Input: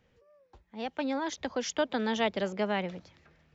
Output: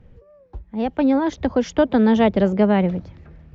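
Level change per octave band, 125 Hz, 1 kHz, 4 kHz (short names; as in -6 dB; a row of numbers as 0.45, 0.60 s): +18.0, +9.5, +1.5 dB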